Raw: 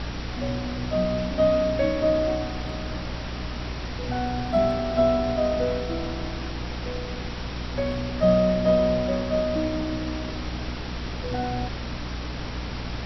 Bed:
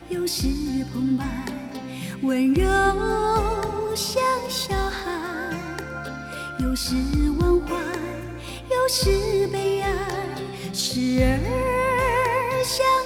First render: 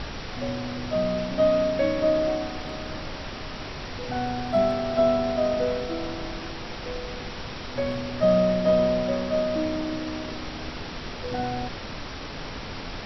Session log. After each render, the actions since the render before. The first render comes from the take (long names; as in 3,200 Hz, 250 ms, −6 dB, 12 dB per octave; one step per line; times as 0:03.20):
mains-hum notches 60/120/180/240/300/360 Hz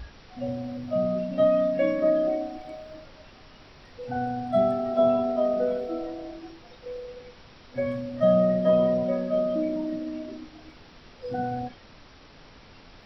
noise reduction from a noise print 15 dB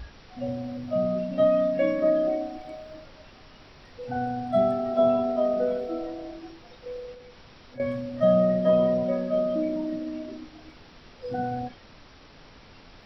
0:07.14–0:07.80: downward compressor 2.5 to 1, threshold −44 dBFS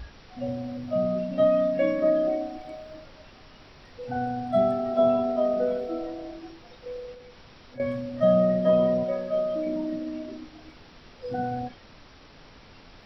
0:09.04–0:09.67: parametric band 230 Hz −10.5 dB 0.79 octaves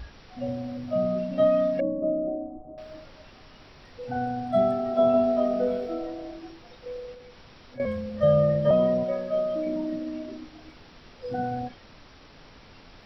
0:01.80–0:02.78: Gaussian smoothing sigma 12 samples
0:05.12–0:05.94: flutter between parallel walls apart 3.4 metres, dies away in 0.23 s
0:07.85–0:08.71: frequency shifter −35 Hz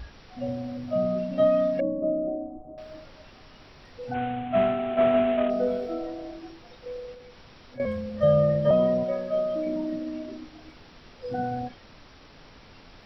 0:04.14–0:05.50: variable-slope delta modulation 16 kbit/s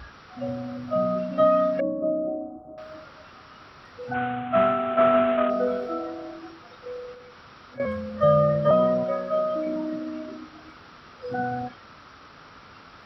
high-pass filter 68 Hz
parametric band 1,300 Hz +13 dB 0.6 octaves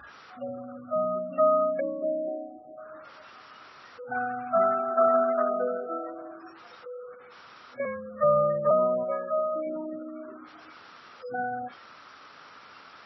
gate on every frequency bin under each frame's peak −25 dB strong
high-pass filter 600 Hz 6 dB per octave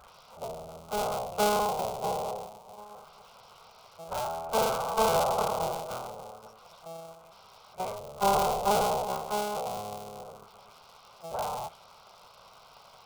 sub-harmonics by changed cycles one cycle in 3, inverted
phaser with its sweep stopped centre 730 Hz, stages 4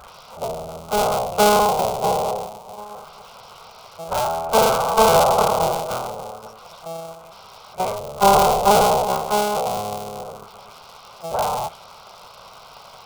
level +11 dB
brickwall limiter −1 dBFS, peak gain reduction 1.5 dB